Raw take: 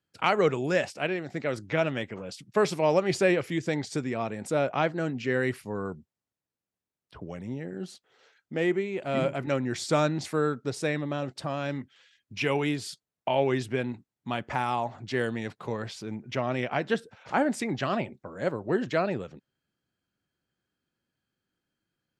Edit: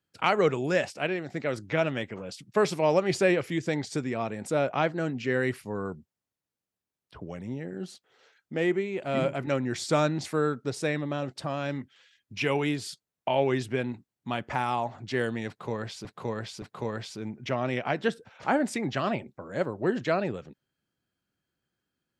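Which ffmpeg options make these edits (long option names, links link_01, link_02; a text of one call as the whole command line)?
ffmpeg -i in.wav -filter_complex "[0:a]asplit=3[link_01][link_02][link_03];[link_01]atrim=end=16.052[link_04];[link_02]atrim=start=15.478:end=16.052[link_05];[link_03]atrim=start=15.478[link_06];[link_04][link_05]acrossfade=duration=0.004:curve1=hsin:curve2=hsin[link_07];[link_07][link_06]acrossfade=duration=0.004:curve1=hsin:curve2=hsin" out.wav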